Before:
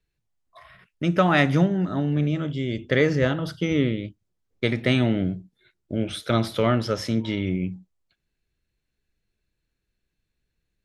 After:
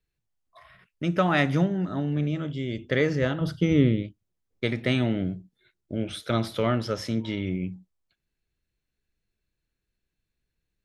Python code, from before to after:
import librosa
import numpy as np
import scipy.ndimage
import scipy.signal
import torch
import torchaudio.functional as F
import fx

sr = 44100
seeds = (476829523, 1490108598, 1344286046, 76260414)

y = fx.low_shelf(x, sr, hz=370.0, db=8.5, at=(3.41, 4.03))
y = F.gain(torch.from_numpy(y), -3.5).numpy()